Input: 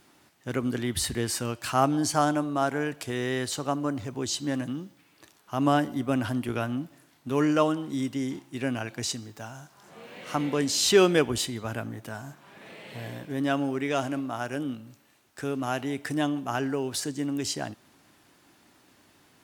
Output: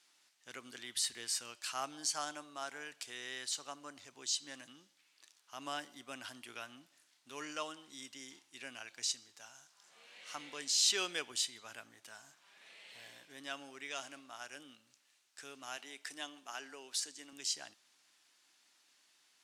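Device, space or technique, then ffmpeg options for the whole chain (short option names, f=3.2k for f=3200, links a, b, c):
piezo pickup straight into a mixer: -filter_complex "[0:a]lowpass=6k,aderivative,asettb=1/sr,asplit=3[a][b][c];[a]atrim=end=15.774[d];[b]atrim=start=15.77:end=17.33,asetpts=PTS-STARTPTS,afade=t=in:d=0.004:c=qsin,afade=t=out:st=1.556:d=0.004:c=qsin,highpass=230[e];[c]atrim=start=17.326[f];[d][e]acrossfade=d=0.004:c1=hsin:c2=qsin[g];[g][f]acrossfade=d=0.004:c1=qsin:c2=hsin,volume=1dB"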